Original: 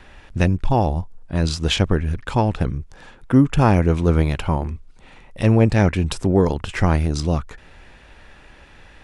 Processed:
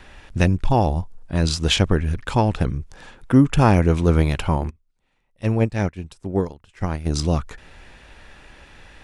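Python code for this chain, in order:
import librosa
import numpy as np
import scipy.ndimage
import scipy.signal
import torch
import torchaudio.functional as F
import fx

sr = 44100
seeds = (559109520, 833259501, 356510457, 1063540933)

y = fx.high_shelf(x, sr, hz=3700.0, db=4.0)
y = fx.upward_expand(y, sr, threshold_db=-26.0, expansion=2.5, at=(4.69, 7.05), fade=0.02)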